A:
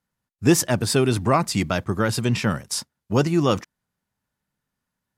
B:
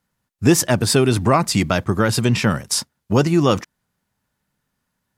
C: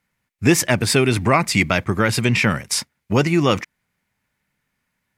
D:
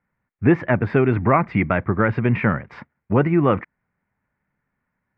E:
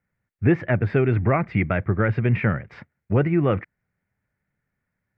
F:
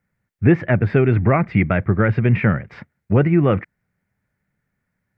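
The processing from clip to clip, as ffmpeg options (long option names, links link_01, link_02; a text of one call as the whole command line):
ffmpeg -i in.wav -af "acompressor=threshold=-24dB:ratio=1.5,volume=7dB" out.wav
ffmpeg -i in.wav -af "equalizer=frequency=2200:width=2.4:gain=12,volume=-1.5dB" out.wav
ffmpeg -i in.wav -af "lowpass=frequency=1800:width=0.5412,lowpass=frequency=1800:width=1.3066" out.wav
ffmpeg -i in.wav -af "equalizer=frequency=100:width_type=o:width=0.67:gain=4,equalizer=frequency=250:width_type=o:width=0.67:gain=-4,equalizer=frequency=1000:width_type=o:width=0.67:gain=-9,volume=-1.5dB" out.wav
ffmpeg -i in.wav -af "equalizer=frequency=190:width_type=o:width=0.77:gain=3,volume=3.5dB" out.wav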